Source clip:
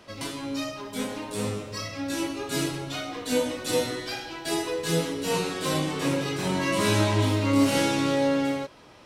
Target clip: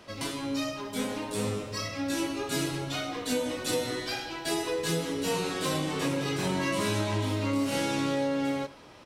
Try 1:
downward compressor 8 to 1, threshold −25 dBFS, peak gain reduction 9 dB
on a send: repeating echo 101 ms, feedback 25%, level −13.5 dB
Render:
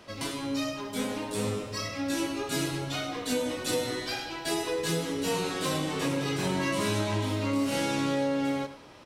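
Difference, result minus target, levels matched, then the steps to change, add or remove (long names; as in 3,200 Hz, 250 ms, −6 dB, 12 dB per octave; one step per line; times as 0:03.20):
echo-to-direct +6.5 dB
change: repeating echo 101 ms, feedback 25%, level −20 dB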